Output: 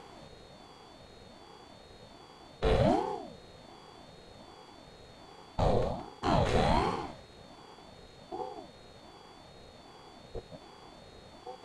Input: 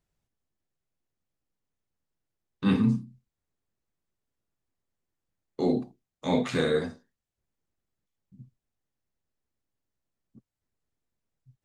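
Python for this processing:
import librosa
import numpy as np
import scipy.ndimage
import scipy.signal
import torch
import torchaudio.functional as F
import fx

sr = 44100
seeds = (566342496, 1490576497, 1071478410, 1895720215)

p1 = fx.bin_compress(x, sr, power=0.4)
p2 = p1 + 10.0 ** (-56.0 / 20.0) * np.sin(2.0 * np.pi * 4000.0 * np.arange(len(p1)) / sr)
p3 = p2 + fx.echo_single(p2, sr, ms=171, db=-9.0, dry=0)
p4 = fx.ring_lfo(p3, sr, carrier_hz=440.0, swing_pct=45, hz=1.3)
y = p4 * 10.0 ** (-3.5 / 20.0)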